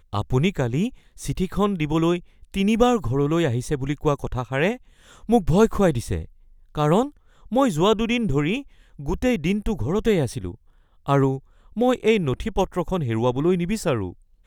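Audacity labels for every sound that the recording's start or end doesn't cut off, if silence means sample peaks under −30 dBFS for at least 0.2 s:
1.200000	2.190000	sound
2.540000	4.750000	sound
5.290000	6.250000	sound
6.750000	7.080000	sound
7.520000	8.610000	sound
8.990000	10.540000	sound
11.080000	11.380000	sound
11.770000	14.120000	sound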